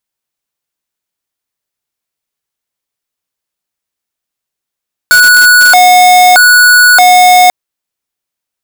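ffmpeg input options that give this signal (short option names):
-f lavfi -i "aevalsrc='0.668*(2*lt(mod((1098.5*t+371.5/0.8*(0.5-abs(mod(0.8*t,1)-0.5))),1),0.5)-1)':d=2.39:s=44100"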